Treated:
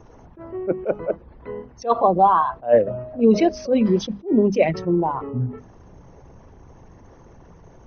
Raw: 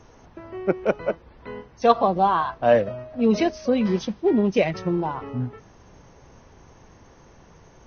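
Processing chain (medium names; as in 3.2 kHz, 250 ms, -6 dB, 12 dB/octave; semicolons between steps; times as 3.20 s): resonances exaggerated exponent 1.5; hum notches 50/100/150/200/250 Hz; attacks held to a fixed rise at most 260 dB/s; trim +4.5 dB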